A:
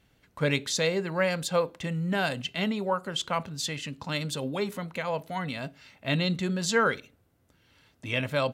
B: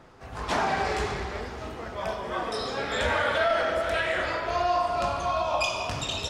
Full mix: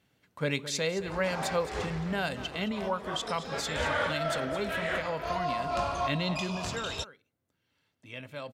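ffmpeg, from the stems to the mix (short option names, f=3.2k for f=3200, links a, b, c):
-filter_complex "[0:a]highpass=100,volume=-4dB,afade=t=out:st=6.4:d=0.34:silence=0.334965,asplit=3[a][b][c];[b]volume=-13.5dB[d];[1:a]adelay=750,volume=-2.5dB[e];[c]apad=whole_len=310728[f];[e][f]sidechaincompress=threshold=-38dB:ratio=8:attack=16:release=232[g];[d]aecho=0:1:218:1[h];[a][g][h]amix=inputs=3:normalize=0"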